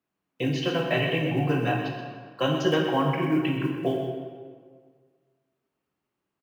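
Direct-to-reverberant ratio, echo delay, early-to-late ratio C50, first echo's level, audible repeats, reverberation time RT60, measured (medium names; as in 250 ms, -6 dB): 0.5 dB, 128 ms, 2.5 dB, -9.5 dB, 1, 1.8 s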